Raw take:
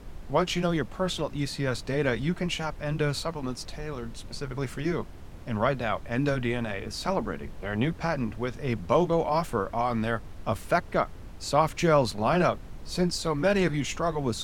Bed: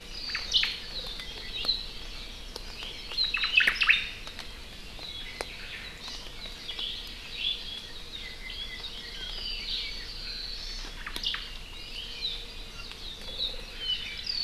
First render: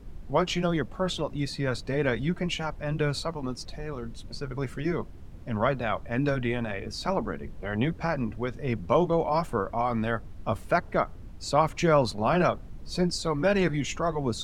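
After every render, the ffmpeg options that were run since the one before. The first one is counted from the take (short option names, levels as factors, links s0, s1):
-af "afftdn=nr=8:nf=-43"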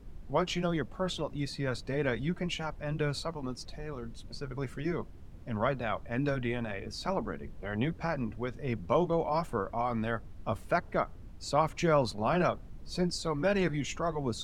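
-af "volume=0.596"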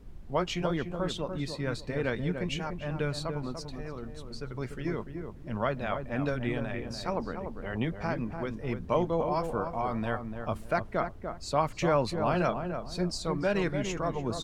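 -filter_complex "[0:a]asplit=2[s0][s1];[s1]adelay=293,lowpass=f=1200:p=1,volume=0.501,asplit=2[s2][s3];[s3]adelay=293,lowpass=f=1200:p=1,volume=0.29,asplit=2[s4][s5];[s5]adelay=293,lowpass=f=1200:p=1,volume=0.29,asplit=2[s6][s7];[s7]adelay=293,lowpass=f=1200:p=1,volume=0.29[s8];[s0][s2][s4][s6][s8]amix=inputs=5:normalize=0"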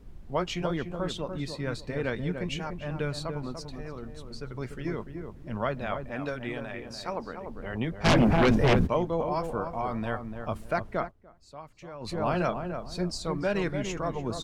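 -filter_complex "[0:a]asettb=1/sr,asplit=3[s0][s1][s2];[s0]atrim=end=6.114[s3];[s1]atrim=start=6.11:end=7.48,asetpts=PTS-STARTPTS,afade=t=in:d=0.004:c=qsin,afade=t=out:st=1.366:d=0.004:c=qsin,lowshelf=f=260:g=-8.5[s4];[s2]atrim=start=7.476[s5];[s3][s4]acrossfade=d=0.004:c1=hsin:c2=qsin[s6];[s6][s5]acrossfade=d=0.004:c1=qsin:c2=hsin,asplit=3[s7][s8][s9];[s7]afade=t=out:st=8.04:d=0.02[s10];[s8]aeval=exprs='0.15*sin(PI/2*5.01*val(0)/0.15)':c=same,afade=t=in:st=8.04:d=0.02,afade=t=out:st=8.86:d=0.02[s11];[s9]afade=t=in:st=8.86:d=0.02[s12];[s10][s11][s12]amix=inputs=3:normalize=0,asplit=3[s13][s14][s15];[s13]atrim=end=11.12,asetpts=PTS-STARTPTS,afade=t=out:st=10.97:d=0.15:c=qsin:silence=0.133352[s16];[s14]atrim=start=11.12:end=12,asetpts=PTS-STARTPTS,volume=0.133[s17];[s15]atrim=start=12,asetpts=PTS-STARTPTS,afade=t=in:d=0.15:c=qsin:silence=0.133352[s18];[s16][s17][s18]concat=n=3:v=0:a=1"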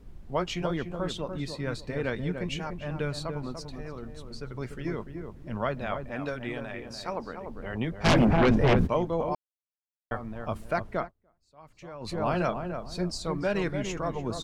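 -filter_complex "[0:a]asettb=1/sr,asplit=3[s0][s1][s2];[s0]atrim=end=8.254[s3];[s1]atrim=start=8.25:end=8.79,asetpts=PTS-STARTPTS,afade=t=in:d=0.004:c=qsin,afade=t=out:st=0.536:d=0.004:c=qsin,aemphasis=mode=reproduction:type=cd[s4];[s2]atrim=start=8.786[s5];[s3][s4]acrossfade=d=0.004:c1=hsin:c2=qsin[s6];[s6][s5]acrossfade=d=0.004:c1=qsin:c2=hsin,asplit=5[s7][s8][s9][s10][s11];[s7]atrim=end=9.35,asetpts=PTS-STARTPTS,afade=t=out:st=9.346:d=0.004:c=hsin[s12];[s8]atrim=start=9.35:end=10.11,asetpts=PTS-STARTPTS,volume=0[s13];[s9]atrim=start=10.11:end=11.14,asetpts=PTS-STARTPTS,afade=t=in:d=0.004:c=hsin,afade=t=out:st=0.87:d=0.16:silence=0.223872[s14];[s10]atrim=start=11.14:end=11.56,asetpts=PTS-STARTPTS,volume=0.224[s15];[s11]atrim=start=11.56,asetpts=PTS-STARTPTS,afade=t=in:d=0.16:silence=0.223872[s16];[s12][s13][s14][s15][s16]concat=n=5:v=0:a=1"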